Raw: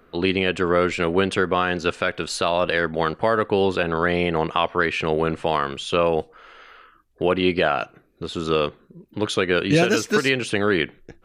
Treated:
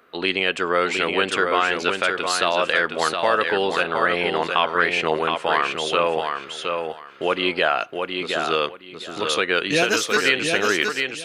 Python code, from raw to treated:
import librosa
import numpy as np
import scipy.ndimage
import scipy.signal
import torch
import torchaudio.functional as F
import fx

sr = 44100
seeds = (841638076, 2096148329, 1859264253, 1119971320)

y = fx.highpass(x, sr, hz=820.0, slope=6)
y = fx.echo_feedback(y, sr, ms=717, feedback_pct=19, wet_db=-5.0)
y = y * librosa.db_to_amplitude(3.5)